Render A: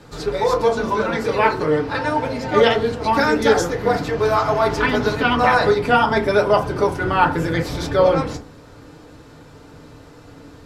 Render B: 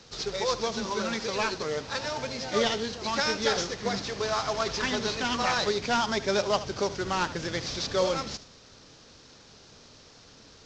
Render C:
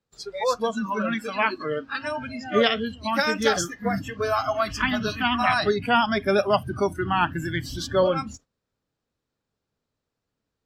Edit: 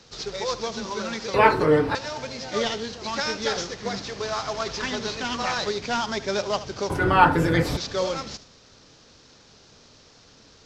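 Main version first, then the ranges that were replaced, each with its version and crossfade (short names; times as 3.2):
B
1.34–1.95 from A
6.9–7.77 from A
not used: C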